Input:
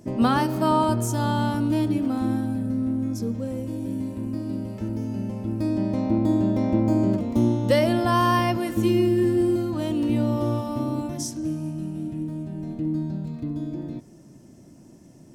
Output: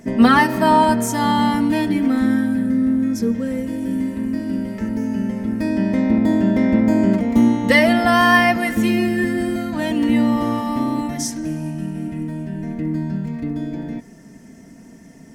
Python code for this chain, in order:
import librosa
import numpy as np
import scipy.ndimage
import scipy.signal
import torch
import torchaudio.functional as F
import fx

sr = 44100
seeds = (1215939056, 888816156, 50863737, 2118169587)

y = fx.peak_eq(x, sr, hz=1900.0, db=12.5, octaves=0.54)
y = y + 0.67 * np.pad(y, (int(4.4 * sr / 1000.0), 0))[:len(y)]
y = F.gain(torch.from_numpy(y), 4.5).numpy()